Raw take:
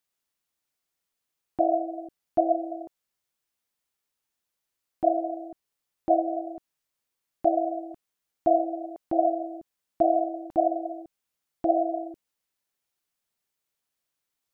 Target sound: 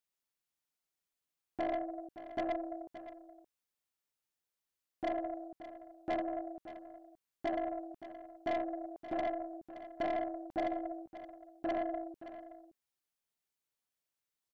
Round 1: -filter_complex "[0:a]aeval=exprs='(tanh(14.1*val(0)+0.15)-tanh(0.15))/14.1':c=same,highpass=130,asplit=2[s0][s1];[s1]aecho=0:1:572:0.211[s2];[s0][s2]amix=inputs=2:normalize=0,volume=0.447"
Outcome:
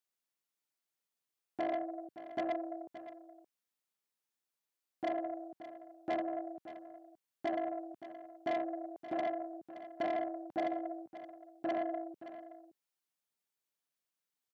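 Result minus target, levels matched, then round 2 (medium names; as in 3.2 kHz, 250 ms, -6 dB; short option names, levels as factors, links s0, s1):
125 Hz band -4.0 dB
-filter_complex "[0:a]aeval=exprs='(tanh(14.1*val(0)+0.15)-tanh(0.15))/14.1':c=same,asplit=2[s0][s1];[s1]aecho=0:1:572:0.211[s2];[s0][s2]amix=inputs=2:normalize=0,volume=0.447"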